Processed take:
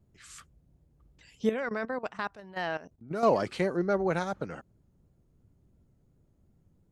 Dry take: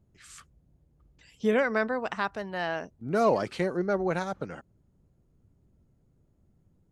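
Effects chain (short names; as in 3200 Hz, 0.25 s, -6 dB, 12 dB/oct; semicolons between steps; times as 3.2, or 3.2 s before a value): 1.49–3.23 level quantiser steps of 16 dB; vibrato 2.8 Hz 45 cents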